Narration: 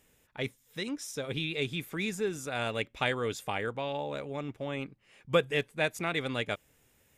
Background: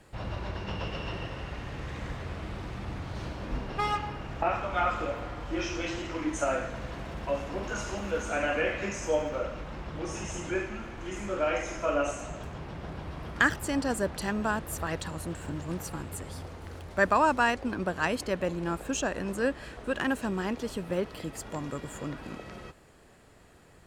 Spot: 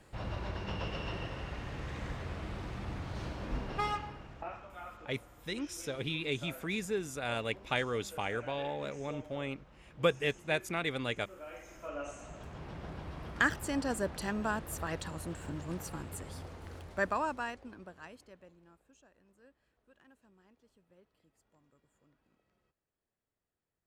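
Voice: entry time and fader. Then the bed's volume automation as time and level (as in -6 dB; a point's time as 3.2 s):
4.70 s, -2.5 dB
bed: 3.77 s -3 dB
4.77 s -19.5 dB
11.45 s -19.5 dB
12.69 s -4.5 dB
16.81 s -4.5 dB
18.98 s -34.5 dB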